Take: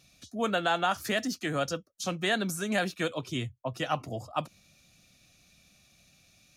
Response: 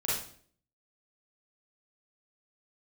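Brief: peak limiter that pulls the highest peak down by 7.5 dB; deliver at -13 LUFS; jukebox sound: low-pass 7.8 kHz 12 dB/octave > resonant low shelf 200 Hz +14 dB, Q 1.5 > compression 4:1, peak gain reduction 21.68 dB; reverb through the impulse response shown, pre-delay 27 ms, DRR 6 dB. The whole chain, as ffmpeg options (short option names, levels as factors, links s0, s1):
-filter_complex "[0:a]alimiter=limit=0.0794:level=0:latency=1,asplit=2[s0][s1];[1:a]atrim=start_sample=2205,adelay=27[s2];[s1][s2]afir=irnorm=-1:irlink=0,volume=0.224[s3];[s0][s3]amix=inputs=2:normalize=0,lowpass=7800,lowshelf=f=200:t=q:w=1.5:g=14,acompressor=threshold=0.00891:ratio=4,volume=28.2"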